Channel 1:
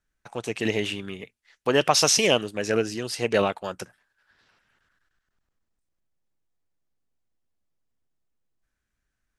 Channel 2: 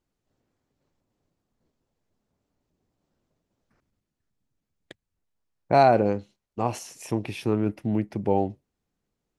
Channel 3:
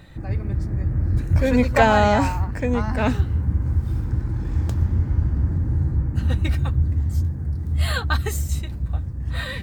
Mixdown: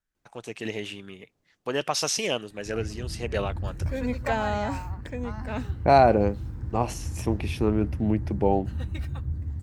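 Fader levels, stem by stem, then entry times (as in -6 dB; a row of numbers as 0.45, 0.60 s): -7.0, +0.5, -11.0 dB; 0.00, 0.15, 2.50 s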